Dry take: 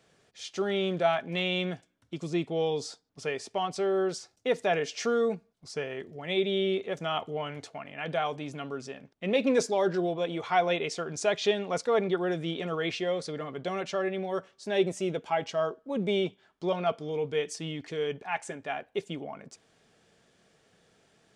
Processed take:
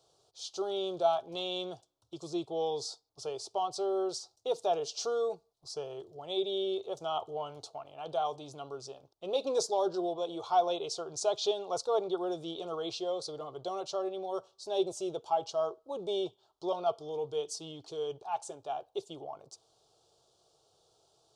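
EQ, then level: EQ curve 130 Hz 0 dB, 220 Hz -18 dB, 340 Hz +2 dB, 530 Hz +2 dB, 810 Hz +7 dB, 1300 Hz 0 dB, 1900 Hz -27 dB, 2900 Hz -3 dB, 4100 Hz +9 dB, 7500 Hz +5 dB; -6.5 dB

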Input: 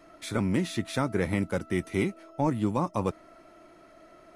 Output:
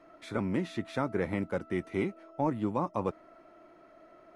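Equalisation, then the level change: LPF 1400 Hz 6 dB/oct; low shelf 220 Hz -9 dB; 0.0 dB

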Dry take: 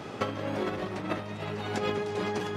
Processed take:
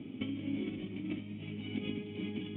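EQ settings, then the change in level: dynamic EQ 2800 Hz, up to +4 dB, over -46 dBFS, Q 0.98; dynamic EQ 480 Hz, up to -5 dB, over -44 dBFS, Q 0.98; vocal tract filter i; +5.5 dB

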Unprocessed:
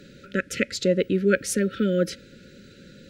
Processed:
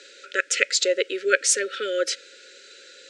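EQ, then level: elliptic band-pass 410–7900 Hz, stop band 40 dB; tilt +3 dB/oct; +3.5 dB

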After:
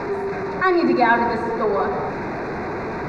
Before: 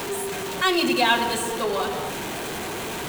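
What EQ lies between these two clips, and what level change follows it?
Butterworth band-stop 3100 Hz, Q 1.7; air absorption 280 m; high shelf 7600 Hz -12 dB; +6.0 dB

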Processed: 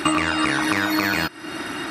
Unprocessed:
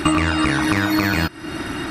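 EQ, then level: HPF 380 Hz 6 dB/oct; 0.0 dB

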